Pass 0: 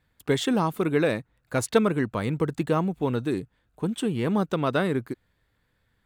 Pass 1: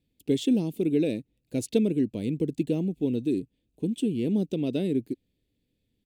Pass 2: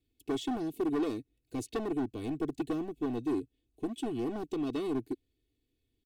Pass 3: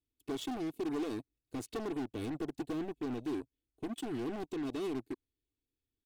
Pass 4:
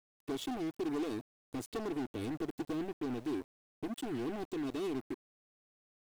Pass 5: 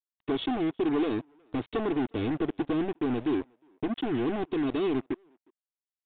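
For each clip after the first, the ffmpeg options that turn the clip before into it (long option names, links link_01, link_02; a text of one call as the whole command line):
ffmpeg -i in.wav -af "firequalizer=gain_entry='entry(110,0);entry(270,10);entry(1200,-29);entry(2500,1)':delay=0.05:min_phase=1,volume=-6.5dB" out.wav
ffmpeg -i in.wav -filter_complex "[0:a]acrossover=split=540|2800[link_01][link_02][link_03];[link_03]alimiter=level_in=7.5dB:limit=-24dB:level=0:latency=1:release=351,volume=-7.5dB[link_04];[link_01][link_02][link_04]amix=inputs=3:normalize=0,asoftclip=type=hard:threshold=-25dB,aecho=1:1:2.7:0.81,volume=-5.5dB" out.wav
ffmpeg -i in.wav -af "alimiter=level_in=8dB:limit=-24dB:level=0:latency=1:release=80,volume=-8dB,aeval=exprs='0.0251*(cos(1*acos(clip(val(0)/0.0251,-1,1)))-cos(1*PI/2))+0.00282*(cos(7*acos(clip(val(0)/0.0251,-1,1)))-cos(7*PI/2))':channel_layout=same,volume=1dB" out.wav
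ffmpeg -i in.wav -af "aeval=exprs='val(0)*gte(abs(val(0)),0.00237)':channel_layout=same" out.wav
ffmpeg -i in.wav -filter_complex "[0:a]asplit=2[link_01][link_02];[link_02]adelay=360,highpass=300,lowpass=3400,asoftclip=type=hard:threshold=-39dB,volume=-28dB[link_03];[link_01][link_03]amix=inputs=2:normalize=0,aresample=8000,aresample=44100,volume=9dB" out.wav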